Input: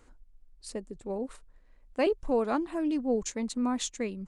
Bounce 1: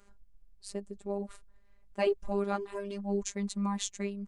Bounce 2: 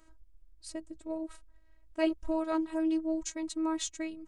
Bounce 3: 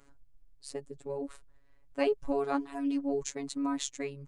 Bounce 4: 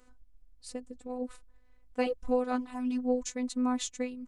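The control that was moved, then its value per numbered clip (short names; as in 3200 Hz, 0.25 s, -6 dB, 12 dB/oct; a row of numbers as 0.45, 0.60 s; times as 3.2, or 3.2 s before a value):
robotiser, frequency: 200, 320, 140, 250 Hz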